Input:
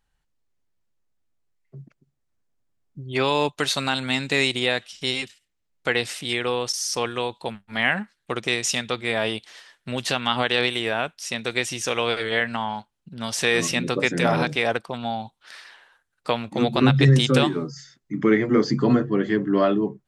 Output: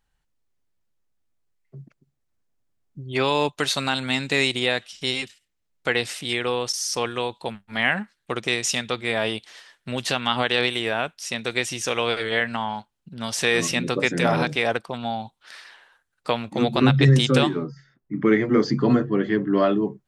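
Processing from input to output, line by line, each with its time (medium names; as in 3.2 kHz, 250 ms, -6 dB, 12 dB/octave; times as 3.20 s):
16.96–19.58 s: level-controlled noise filter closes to 1.2 kHz, open at -12.5 dBFS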